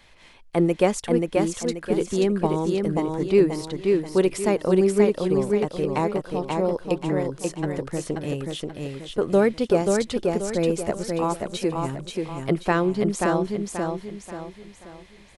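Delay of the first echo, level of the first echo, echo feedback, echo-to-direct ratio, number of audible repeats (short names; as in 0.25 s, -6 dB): 0.533 s, -3.5 dB, 38%, -3.0 dB, 4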